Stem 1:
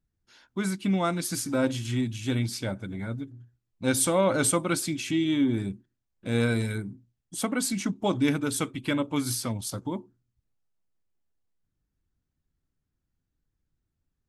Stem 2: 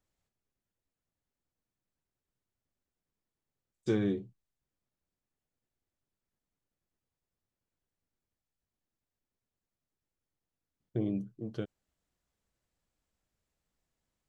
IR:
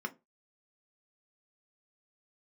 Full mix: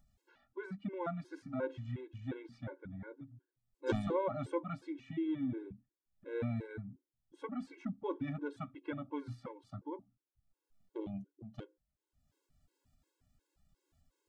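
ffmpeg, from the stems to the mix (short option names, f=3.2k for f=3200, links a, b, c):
-filter_complex "[0:a]lowpass=1.4k,volume=-7dB[a];[1:a]aeval=exprs='0.141*(cos(1*acos(clip(val(0)/0.141,-1,1)))-cos(1*PI/2))+0.002*(cos(2*acos(clip(val(0)/0.141,-1,1)))-cos(2*PI/2))+0.0355*(cos(3*acos(clip(val(0)/0.141,-1,1)))-cos(3*PI/2))+0.00112*(cos(5*acos(clip(val(0)/0.141,-1,1)))-cos(5*PI/2))':c=same,volume=2dB,asplit=2[b][c];[c]volume=-11.5dB[d];[2:a]atrim=start_sample=2205[e];[d][e]afir=irnorm=-1:irlink=0[f];[a][b][f]amix=inputs=3:normalize=0,equalizer=f=180:w=0.71:g=-3,acompressor=mode=upward:threshold=-56dB:ratio=2.5,afftfilt=real='re*gt(sin(2*PI*2.8*pts/sr)*(1-2*mod(floor(b*sr/1024/280),2)),0)':imag='im*gt(sin(2*PI*2.8*pts/sr)*(1-2*mod(floor(b*sr/1024/280),2)),0)':win_size=1024:overlap=0.75"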